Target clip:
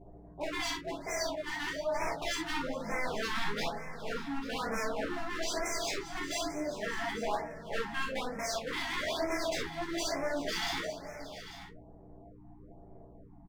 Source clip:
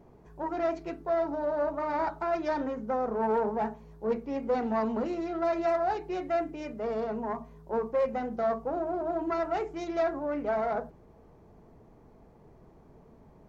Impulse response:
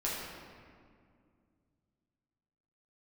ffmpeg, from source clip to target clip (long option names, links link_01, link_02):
-filter_complex "[0:a]asettb=1/sr,asplit=3[link_01][link_02][link_03];[link_01]atrim=end=1.164[link_04];[link_02]atrim=start=1.16:end=2.07,asetpts=PTS-STARTPTS,afade=type=in:duration=0.004:curve=qsin,afade=type=out:start_time=0.906:duration=0.004:curve=qsin,agate=range=-7dB:threshold=-29dB:ratio=16:detection=peak[link_05];[link_03]atrim=start=2.066[link_06];[link_04][link_05]acrossfade=duration=0.004:curve1=hsin:curve2=qsin[link_07];[link_07][link_06]acrossfade=duration=0.004:curve1=qsin:curve2=hsin,equalizer=frequency=700:width_type=o:width=0.44:gain=12,adynamicsmooth=sensitivity=3.5:basefreq=710,aeval=exprs='0.0422*(abs(mod(val(0)/0.0422+3,4)-2)-1)':channel_layout=same,aeval=exprs='val(0)+0.00355*(sin(2*PI*60*n/s)+sin(2*PI*2*60*n/s)/2+sin(2*PI*3*60*n/s)/3+sin(2*PI*4*60*n/s)/4+sin(2*PI*5*60*n/s)/5)':channel_layout=same,asettb=1/sr,asplit=3[link_08][link_09][link_10];[link_08]atrim=end=5.124[link_11];[link_09]atrim=start=5.12:end=5.56,asetpts=PTS-STARTPTS,afade=type=in:duration=0.004:curve=qsin,afade=type=out:start_time=0.436:duration=0.004:curve=qsin,volume=29.5dB,asoftclip=hard,volume=-29.5dB[link_12];[link_10]atrim=start=5.556[link_13];[link_11][link_12]acrossfade=duration=0.004:curve1=hsin:curve2=qsin[link_14];[link_14][link_13]acrossfade=duration=0.004:curve1=qsin:curve2=hsin,flanger=delay=9.9:depth=2.4:regen=45:speed=0.16:shape=triangular,aecho=1:1:412|576|842:0.112|0.178|0.211[link_15];[1:a]atrim=start_sample=2205,atrim=end_sample=3087[link_16];[link_15][link_16]afir=irnorm=-1:irlink=0,afftfilt=real='re*(1-between(b*sr/1024,460*pow(3700/460,0.5+0.5*sin(2*PI*1.1*pts/sr))/1.41,460*pow(3700/460,0.5+0.5*sin(2*PI*1.1*pts/sr))*1.41))':imag='im*(1-between(b*sr/1024,460*pow(3700/460,0.5+0.5*sin(2*PI*1.1*pts/sr))/1.41,460*pow(3700/460,0.5+0.5*sin(2*PI*1.1*pts/sr))*1.41))':win_size=1024:overlap=0.75"